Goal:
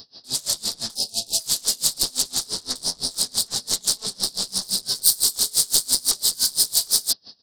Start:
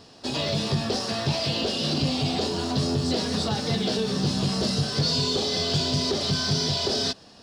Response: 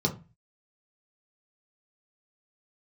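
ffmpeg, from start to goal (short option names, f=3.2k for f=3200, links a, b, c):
-filter_complex "[0:a]aresample=11025,aresample=44100,aeval=exprs='0.237*(cos(1*acos(clip(val(0)/0.237,-1,1)))-cos(1*PI/2))+0.0668*(cos(3*acos(clip(val(0)/0.237,-1,1)))-cos(3*PI/2))+0.106*(cos(4*acos(clip(val(0)/0.237,-1,1)))-cos(4*PI/2))+0.0237*(cos(6*acos(clip(val(0)/0.237,-1,1)))-cos(6*PI/2))+0.119*(cos(7*acos(clip(val(0)/0.237,-1,1)))-cos(7*PI/2))':c=same,aexciter=amount=12.3:drive=5.3:freq=4k,asplit=3[a][b][c];[a]afade=t=out:st=0.94:d=0.02[d];[b]asuperstop=centerf=1500:order=20:qfactor=0.98,afade=t=in:st=0.94:d=0.02,afade=t=out:st=1.39:d=0.02[e];[c]afade=t=in:st=1.39:d=0.02[f];[d][e][f]amix=inputs=3:normalize=0,aeval=exprs='val(0)*pow(10,-27*(0.5-0.5*cos(2*PI*5.9*n/s))/20)':c=same,volume=-12dB"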